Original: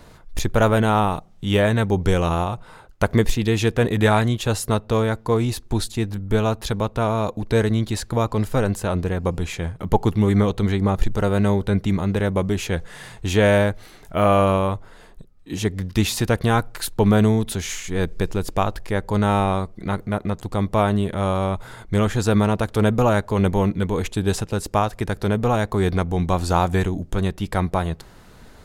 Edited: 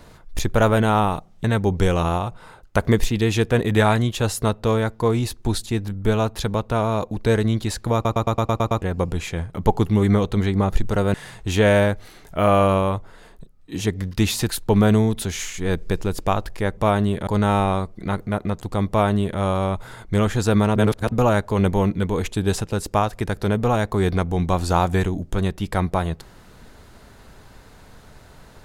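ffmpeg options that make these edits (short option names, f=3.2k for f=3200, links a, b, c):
-filter_complex "[0:a]asplit=16[a][b][c][d][e][f][g][h][i][j][k][l][m][n][o][p];[a]atrim=end=1.442[q];[b]atrim=start=1.698:end=8.312[r];[c]atrim=start=8.198:end=8.312[s];[d]atrim=start=8.198:end=8.312[t];[e]atrim=start=8.198:end=8.312[u];[f]atrim=start=8.198:end=8.312[v];[g]atrim=start=8.198:end=8.312[w];[h]atrim=start=8.198:end=8.312[x];[i]atrim=start=8.198:end=8.312[y];[j]atrim=start=9.078:end=11.402[z];[k]atrim=start=12.918:end=16.272[aa];[l]atrim=start=16.788:end=19.072[ab];[m]atrim=start=20.688:end=21.192[ac];[n]atrim=start=19.068:end=22.562[ad];[o]atrim=start=22.558:end=22.922,asetpts=PTS-STARTPTS,areverse[ae];[p]atrim=start=22.918[af];[q][r]acrossfade=d=0.004:c1=hsin:c2=hsin[ag];[ag][s]acrossfade=d=0.004:c1=hsin:c2=hsin[ah];[ah][t]acrossfade=d=0.004:c1=hsin:c2=hsin[ai];[ai][u]acrossfade=d=0.004:c1=hsin:c2=hsin[aj];[aj][v]acrossfade=d=0.004:c1=hsin:c2=hsin[ak];[ak][w]acrossfade=d=0.004:c1=hsin:c2=hsin[al];[al][x]acrossfade=d=0.004:c1=hsin:c2=hsin[am];[am][y]acrossfade=d=0.004:c1=hsin:c2=hsin[an];[an][z]acrossfade=d=0.004:c1=hsin:c2=hsin[ao];[ao][aa]acrossfade=d=0.004:c1=hsin:c2=hsin[ap];[ap][ab]acrossfade=d=0.004:c1=hsin:c2=hsin[aq];[aq][ac]acrossfade=d=0.004:c1=hsin:c2=hsin[ar];[ar][ad]acrossfade=d=0.004:c1=hsin:c2=hsin[as];[as][ae]acrossfade=d=0.004:c1=hsin:c2=hsin[at];[at][af]acrossfade=d=0.004:c1=hsin:c2=hsin"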